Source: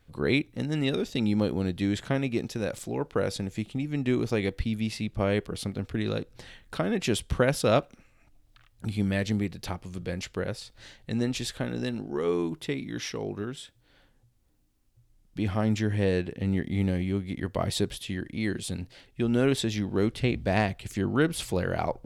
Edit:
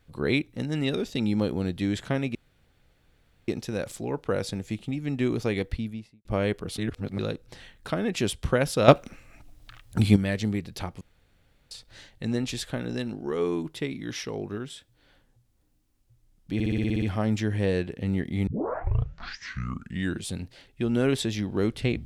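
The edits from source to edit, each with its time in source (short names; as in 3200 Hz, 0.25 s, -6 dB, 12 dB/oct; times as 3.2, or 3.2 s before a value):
2.35 insert room tone 1.13 s
4.5–5.12 studio fade out
5.65–6.06 reverse
7.75–9.03 gain +10 dB
9.88–10.58 room tone
15.41 stutter 0.06 s, 9 plays
16.86 tape start 1.80 s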